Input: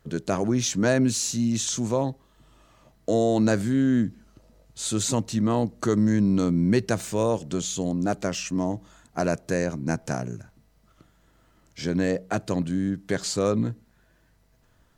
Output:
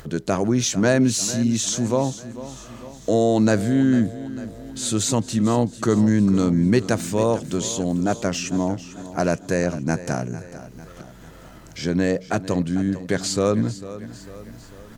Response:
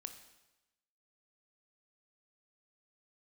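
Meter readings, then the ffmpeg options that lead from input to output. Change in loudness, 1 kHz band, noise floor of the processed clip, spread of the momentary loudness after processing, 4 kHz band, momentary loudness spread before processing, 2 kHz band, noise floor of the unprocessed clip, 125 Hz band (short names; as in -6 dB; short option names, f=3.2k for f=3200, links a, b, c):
+3.5 dB, +3.5 dB, -43 dBFS, 18 LU, +3.5 dB, 9 LU, +3.5 dB, -62 dBFS, +3.5 dB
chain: -filter_complex "[0:a]acompressor=mode=upward:threshold=-36dB:ratio=2.5,asplit=2[a][b];[b]aecho=0:1:448|896|1344|1792|2240:0.178|0.0942|0.05|0.0265|0.014[c];[a][c]amix=inputs=2:normalize=0,volume=3.5dB"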